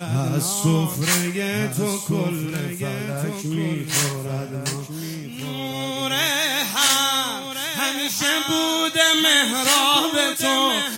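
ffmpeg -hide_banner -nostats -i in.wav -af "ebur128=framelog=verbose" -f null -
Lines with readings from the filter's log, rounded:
Integrated loudness:
  I:         -20.1 LUFS
  Threshold: -30.3 LUFS
Loudness range:
  LRA:         7.8 LU
  Threshold: -41.0 LUFS
  LRA low:   -25.5 LUFS
  LRA high:  -17.7 LUFS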